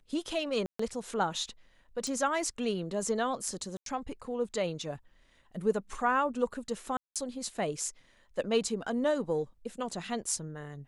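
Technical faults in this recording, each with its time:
0.66–0.79 gap 0.134 s
2.07 pop
3.77–3.86 gap 92 ms
6.97–7.16 gap 0.187 s

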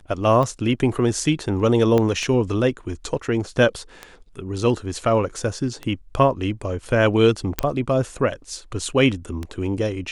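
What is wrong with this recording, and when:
tick 33 1/3 rpm -15 dBFS
1.98 pop -9 dBFS
7.59 pop -4 dBFS

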